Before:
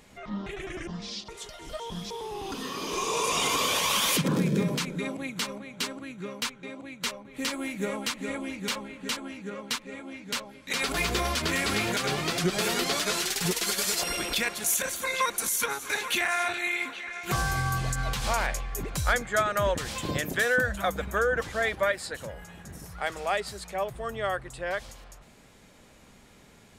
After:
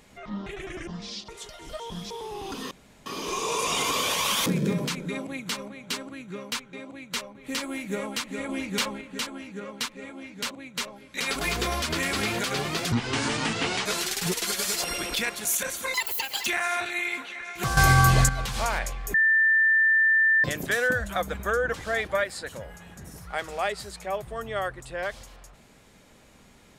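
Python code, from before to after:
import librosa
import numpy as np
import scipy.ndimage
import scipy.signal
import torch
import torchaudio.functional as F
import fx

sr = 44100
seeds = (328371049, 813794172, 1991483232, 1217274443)

y = fx.edit(x, sr, fx.insert_room_tone(at_s=2.71, length_s=0.35),
    fx.cut(start_s=4.11, length_s=0.25),
    fx.duplicate(start_s=6.77, length_s=0.37, to_s=10.41),
    fx.clip_gain(start_s=8.39, length_s=0.52, db=4.0),
    fx.speed_span(start_s=12.45, length_s=0.6, speed=0.64),
    fx.speed_span(start_s=15.13, length_s=1.01, speed=1.93),
    fx.clip_gain(start_s=17.45, length_s=0.52, db=10.5),
    fx.bleep(start_s=18.82, length_s=1.3, hz=1780.0, db=-17.0), tone=tone)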